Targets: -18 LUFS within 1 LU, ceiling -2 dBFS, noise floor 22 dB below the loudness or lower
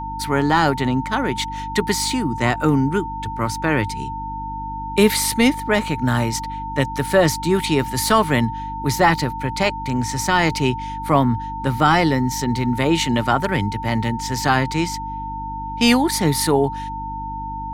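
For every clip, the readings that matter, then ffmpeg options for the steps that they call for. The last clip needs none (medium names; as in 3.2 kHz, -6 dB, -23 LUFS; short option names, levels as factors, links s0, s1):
hum 50 Hz; highest harmonic 300 Hz; hum level -30 dBFS; steady tone 900 Hz; tone level -27 dBFS; loudness -20.0 LUFS; peak level -3.5 dBFS; loudness target -18.0 LUFS
-> -af "bandreject=f=50:t=h:w=4,bandreject=f=100:t=h:w=4,bandreject=f=150:t=h:w=4,bandreject=f=200:t=h:w=4,bandreject=f=250:t=h:w=4,bandreject=f=300:t=h:w=4"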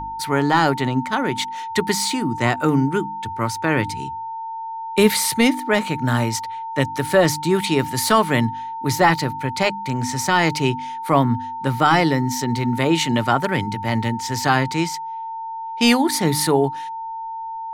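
hum not found; steady tone 900 Hz; tone level -27 dBFS
-> -af "bandreject=f=900:w=30"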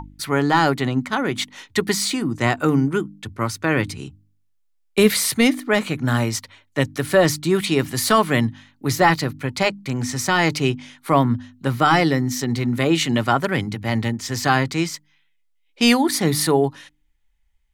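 steady tone not found; loudness -20.5 LUFS; peak level -3.5 dBFS; loudness target -18.0 LUFS
-> -af "volume=1.33,alimiter=limit=0.794:level=0:latency=1"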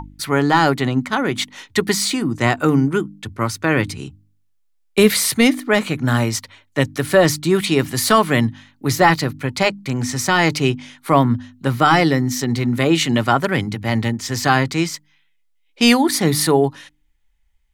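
loudness -18.0 LUFS; peak level -2.0 dBFS; noise floor -61 dBFS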